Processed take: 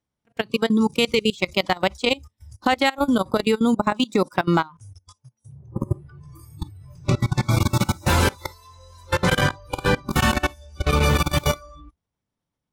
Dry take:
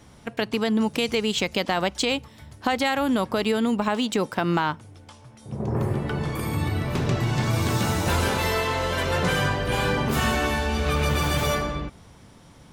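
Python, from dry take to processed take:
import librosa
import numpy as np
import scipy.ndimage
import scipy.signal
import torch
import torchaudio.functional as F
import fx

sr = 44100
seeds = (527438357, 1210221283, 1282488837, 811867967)

y = fx.level_steps(x, sr, step_db=23)
y = fx.noise_reduce_blind(y, sr, reduce_db=21)
y = y * librosa.db_to_amplitude(6.0)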